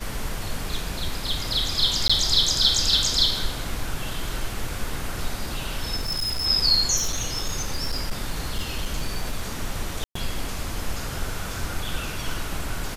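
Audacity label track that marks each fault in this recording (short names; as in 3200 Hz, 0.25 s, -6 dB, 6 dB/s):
2.080000	2.100000	gap 15 ms
5.960000	6.460000	clipped -23 dBFS
6.960000	9.520000	clipped -20 dBFS
10.040000	10.150000	gap 0.114 s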